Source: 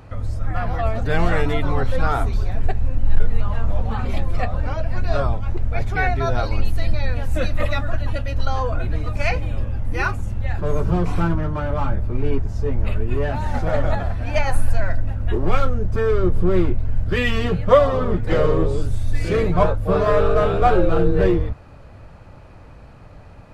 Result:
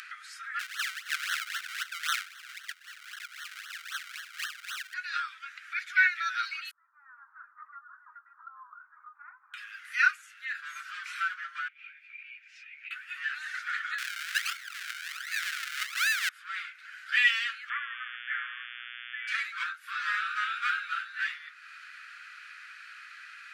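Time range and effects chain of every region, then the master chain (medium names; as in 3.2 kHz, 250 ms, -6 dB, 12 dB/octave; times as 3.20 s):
0.59–4.94 s: high-pass 590 Hz + decimation with a swept rate 35× 3.8 Hz
6.71–9.54 s: steep low-pass 1 kHz 48 dB/octave + bass shelf 280 Hz -9 dB
11.68–12.91 s: two resonant band-passes 1.1 kHz, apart 2.3 oct + compression 4:1, threshold -40 dBFS
13.98–16.29 s: tilt shelf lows +4 dB, about 1.3 kHz + decimation with a swept rate 40× 1.3 Hz + compression 5:1, threshold -12 dBFS
17.68–19.27 s: rippled Chebyshev low-pass 2.4 kHz, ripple 6 dB + mains buzz 120 Hz, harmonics 29, -44 dBFS 0 dB/octave
whole clip: steep high-pass 1.4 kHz 72 dB/octave; tilt EQ -3 dB/octave; upward compressor, threshold -42 dBFS; trim +5 dB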